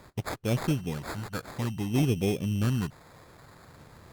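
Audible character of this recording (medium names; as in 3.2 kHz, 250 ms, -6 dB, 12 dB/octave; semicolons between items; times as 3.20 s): phasing stages 2, 0.54 Hz, lowest notch 330–1100 Hz; aliases and images of a low sample rate 2.9 kHz, jitter 0%; Opus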